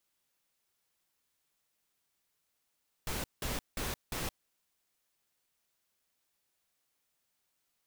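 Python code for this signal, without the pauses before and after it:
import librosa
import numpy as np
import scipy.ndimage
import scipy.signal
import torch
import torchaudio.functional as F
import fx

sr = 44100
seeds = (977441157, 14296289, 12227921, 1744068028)

y = fx.noise_burst(sr, seeds[0], colour='pink', on_s=0.17, off_s=0.18, bursts=4, level_db=-36.0)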